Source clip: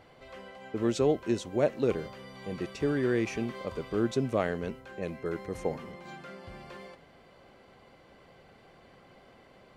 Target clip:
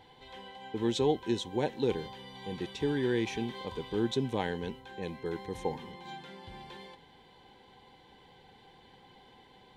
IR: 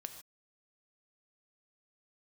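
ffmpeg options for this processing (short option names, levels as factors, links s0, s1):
-af "superequalizer=8b=0.355:9b=2:10b=0.355:13b=2.82,volume=0.794"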